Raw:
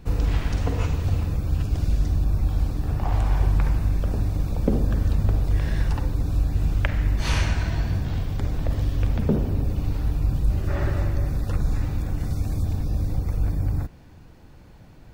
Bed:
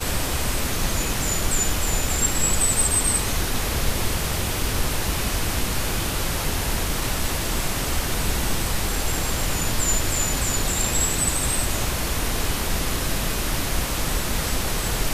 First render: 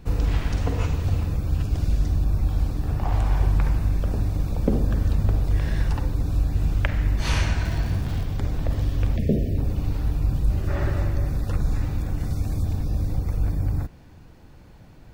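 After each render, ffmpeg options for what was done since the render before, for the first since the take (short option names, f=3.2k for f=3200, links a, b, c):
-filter_complex "[0:a]asettb=1/sr,asplit=3[a][b][c];[a]atrim=end=7.654[d];[b]atrim=start=7.65:end=8.24,asetpts=PTS-STARTPTS,afade=t=in:d=0.004:c=qsin,afade=t=out:st=0.586:d=0.004:c=qsin,aeval=exprs='val(0)*gte(abs(val(0)),0.0158)':c=same[e];[c]atrim=start=8.236[f];[d][e]acrossfade=d=0.004:c1=hsin:c2=qsin[g];[g][f]acrossfade=d=0.004:c1=qsin:c2=hsin,asettb=1/sr,asplit=3[h][i][j];[h]atrim=end=9.164[k];[i]atrim=start=9.16:end=9.58,asetpts=PTS-STARTPTS,afade=t=in:d=0.004:c=qsin,afade=t=out:st=0.416:d=0.004:c=qsin,asuperstop=centerf=1100:order=20:qfactor=1.1[l];[j]atrim=start=9.576[m];[k][l]acrossfade=d=0.004:c1=hsin:c2=qsin[n];[n][m]acrossfade=d=0.004:c1=qsin:c2=hsin"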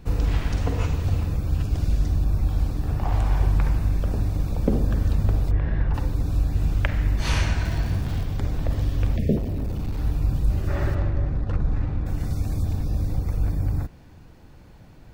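-filter_complex "[0:a]asplit=3[a][b][c];[a]afade=t=out:st=5.5:d=0.02[d];[b]lowpass=1.9k,afade=t=in:st=5.5:d=0.02,afade=t=out:st=5.93:d=0.02[e];[c]afade=t=in:st=5.93:d=0.02[f];[d][e][f]amix=inputs=3:normalize=0,asettb=1/sr,asplit=3[g][h][i];[g]atrim=end=9.374[j];[h]atrim=start=9.37:end=9.98,asetpts=PTS-STARTPTS,afade=t=in:d=0.004:c=qsin,afade=t=out:st=0.606:d=0.004:c=qsin,asoftclip=type=hard:threshold=-23dB[k];[i]atrim=start=9.976[l];[j][k]acrossfade=d=0.004:c1=hsin:c2=qsin[m];[m][l]acrossfade=d=0.004:c1=qsin:c2=hsin,asplit=3[n][o][p];[n]afade=t=out:st=10.94:d=0.02[q];[o]adynamicsmooth=sensitivity=7:basefreq=1.4k,afade=t=in:st=10.94:d=0.02,afade=t=out:st=12.05:d=0.02[r];[p]afade=t=in:st=12.05:d=0.02[s];[q][r][s]amix=inputs=3:normalize=0"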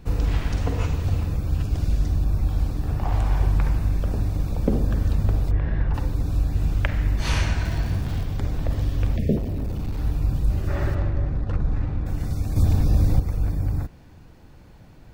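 -filter_complex "[0:a]asettb=1/sr,asplit=3[a][b][c];[a]atrim=end=12.564[d];[b]atrim=start=12.56:end=13.2,asetpts=PTS-STARTPTS,afade=t=in:d=0.004:c=qsin,afade=t=out:st=0.636:d=0.004:c=qsin,acontrast=68[e];[c]atrim=start=13.196[f];[d][e]acrossfade=d=0.004:c1=hsin:c2=qsin[g];[g][f]acrossfade=d=0.004:c1=qsin:c2=hsin"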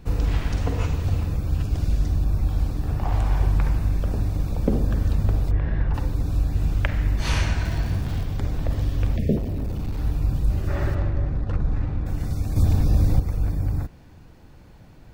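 -af anull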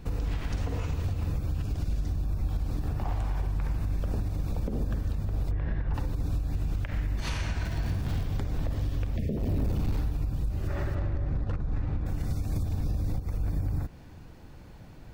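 -af "acompressor=threshold=-21dB:ratio=6,alimiter=limit=-21.5dB:level=0:latency=1:release=142"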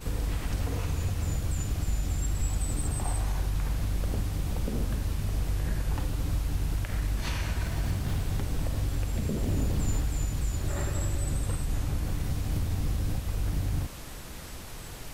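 -filter_complex "[1:a]volume=-18.5dB[a];[0:a][a]amix=inputs=2:normalize=0"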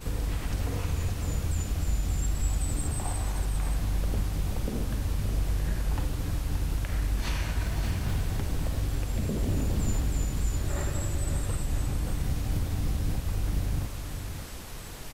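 -af "aecho=1:1:575:0.376"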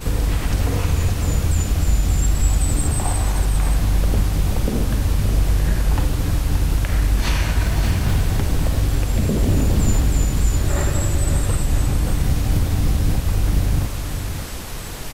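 -af "volume=10.5dB"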